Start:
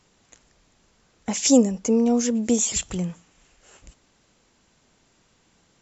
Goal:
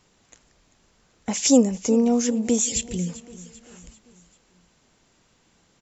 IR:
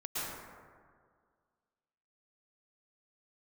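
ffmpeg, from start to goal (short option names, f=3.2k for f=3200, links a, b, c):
-filter_complex "[0:a]asplit=3[a][b][c];[a]afade=t=out:st=2.62:d=0.02[d];[b]asuperstop=centerf=1000:order=4:qfactor=0.6,afade=t=in:st=2.62:d=0.02,afade=t=out:st=3.07:d=0.02[e];[c]afade=t=in:st=3.07:d=0.02[f];[d][e][f]amix=inputs=3:normalize=0,aecho=1:1:391|782|1173|1564:0.133|0.0667|0.0333|0.0167"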